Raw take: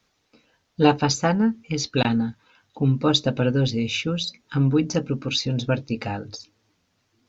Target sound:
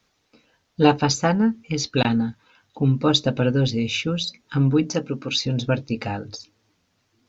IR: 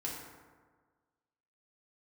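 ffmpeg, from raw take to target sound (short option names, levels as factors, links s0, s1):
-filter_complex "[0:a]asettb=1/sr,asplit=3[s0][s1][s2];[s0]atrim=end=4.834[s3];[s1]atrim=start=4.83:end=5.37,asetpts=PTS-STARTPTS,afade=t=in:d=0.004:c=qsin,afade=t=out:st=0.536:d=0.004:c=qsin,highpass=f=210:p=1[s4];[s2]atrim=start=5.366[s5];[s3][s4]acrossfade=d=0.004:c1=hsin:c2=qsin[s6];[s6][s5]acrossfade=d=0.004:c1=qsin:c2=hsin,volume=1.12"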